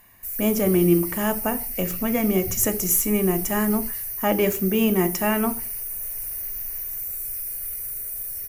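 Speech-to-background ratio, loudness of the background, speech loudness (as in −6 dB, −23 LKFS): 5.0 dB, −28.0 LKFS, −23.0 LKFS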